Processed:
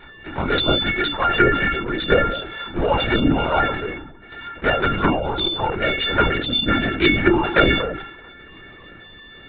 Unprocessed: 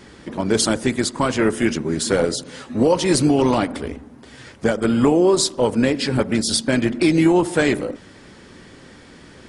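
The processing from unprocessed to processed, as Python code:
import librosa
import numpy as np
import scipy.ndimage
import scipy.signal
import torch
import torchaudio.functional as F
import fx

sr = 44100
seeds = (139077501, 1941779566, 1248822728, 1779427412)

p1 = fx.freq_snap(x, sr, grid_st=4)
p2 = fx.peak_eq(p1, sr, hz=1500.0, db=14.5, octaves=0.27)
p3 = fx.level_steps(p2, sr, step_db=12)
p4 = p2 + (p3 * 10.0 ** (-0.5 / 20.0))
p5 = fx.cheby_harmonics(p4, sr, harmonics=(7,), levels_db=(-42,), full_scale_db=6.5)
p6 = fx.env_flanger(p5, sr, rest_ms=11.1, full_db=-4.0)
p7 = fx.lpc_vocoder(p6, sr, seeds[0], excitation='whisper', order=16)
p8 = fx.sustainer(p7, sr, db_per_s=63.0)
y = p8 * 10.0 ** (-2.5 / 20.0)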